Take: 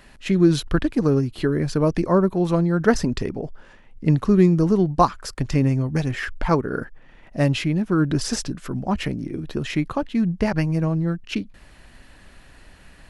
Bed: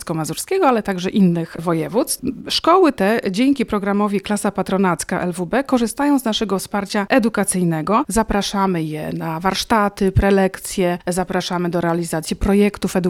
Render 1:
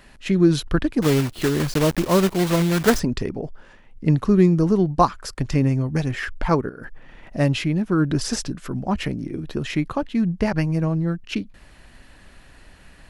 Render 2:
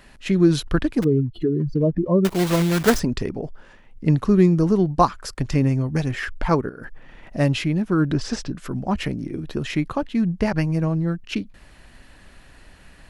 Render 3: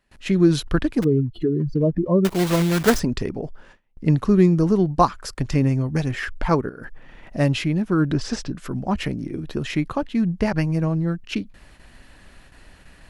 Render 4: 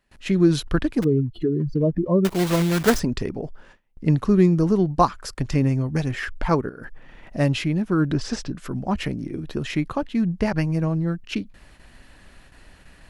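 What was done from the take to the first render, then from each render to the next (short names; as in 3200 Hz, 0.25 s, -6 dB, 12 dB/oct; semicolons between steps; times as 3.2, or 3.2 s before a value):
1.02–3.01 block floating point 3-bit; 6.69–7.38 negative-ratio compressor -35 dBFS
1.04–2.25 spectral contrast raised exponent 2.4; 8.14–8.56 air absorption 100 m
gate with hold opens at -38 dBFS
gain -1 dB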